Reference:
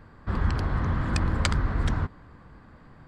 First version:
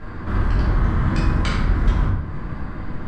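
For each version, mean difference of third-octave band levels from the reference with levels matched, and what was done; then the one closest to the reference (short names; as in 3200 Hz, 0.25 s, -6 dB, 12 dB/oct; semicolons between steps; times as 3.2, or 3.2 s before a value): 5.5 dB: compressor 3:1, threshold -40 dBFS, peak gain reduction 15.5 dB; short-mantissa float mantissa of 4-bit; air absorption 74 m; shoebox room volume 310 m³, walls mixed, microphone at 3 m; gain +9 dB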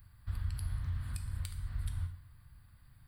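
10.0 dB: pre-emphasis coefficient 0.9; compressor 10:1, threshold -45 dBFS, peak gain reduction 17 dB; EQ curve 120 Hz 0 dB, 190 Hz -15 dB, 430 Hz -26 dB, 610 Hz -21 dB, 4500 Hz -14 dB, 6500 Hz -27 dB, 10000 Hz 0 dB; non-linear reverb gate 0.25 s falling, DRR 5 dB; gain +13.5 dB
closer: first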